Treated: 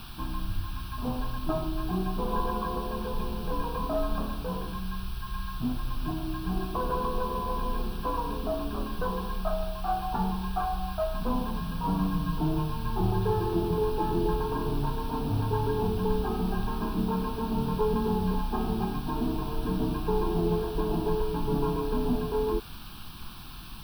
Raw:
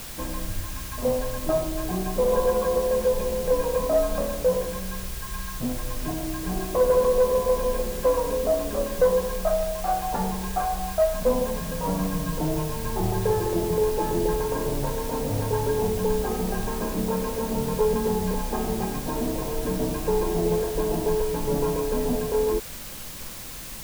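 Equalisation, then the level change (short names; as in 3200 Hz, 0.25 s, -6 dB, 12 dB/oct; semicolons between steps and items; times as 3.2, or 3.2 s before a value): dynamic EQ 410 Hz, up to +5 dB, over -33 dBFS, Q 1.2; high shelf 6200 Hz -11.5 dB; fixed phaser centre 2000 Hz, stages 6; 0.0 dB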